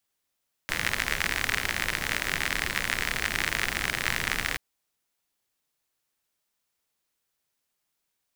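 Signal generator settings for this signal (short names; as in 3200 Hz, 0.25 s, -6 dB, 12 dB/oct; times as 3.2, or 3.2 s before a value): rain from filtered ticks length 3.88 s, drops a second 61, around 1900 Hz, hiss -5.5 dB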